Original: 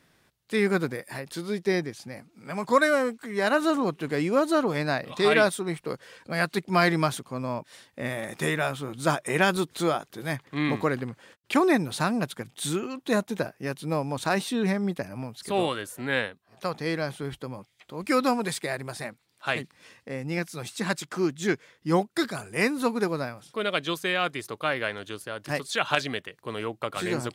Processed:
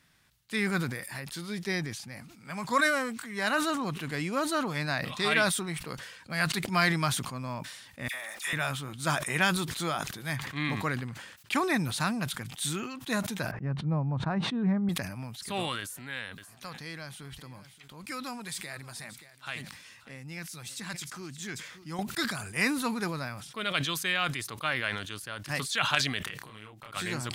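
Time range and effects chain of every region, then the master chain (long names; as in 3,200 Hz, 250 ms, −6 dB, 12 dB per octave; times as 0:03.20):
0:08.08–0:08.53: high-pass filter 720 Hz + all-pass dispersion lows, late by 61 ms, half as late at 1,700 Hz + centre clipping without the shift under −51 dBFS
0:13.51–0:14.89: low-pass filter 1,000 Hz + parametric band 140 Hz +8 dB 1 octave
0:15.80–0:21.99: downward compressor 1.5 to 1, threshold −46 dBFS + high-shelf EQ 3,800 Hz +3.5 dB + single-tap delay 579 ms −20 dB
0:26.22–0:26.93: downward compressor 5 to 1, threshold −42 dBFS + double-tracking delay 28 ms −2 dB
whole clip: parametric band 440 Hz −12 dB 1.8 octaves; level that may fall only so fast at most 53 dB per second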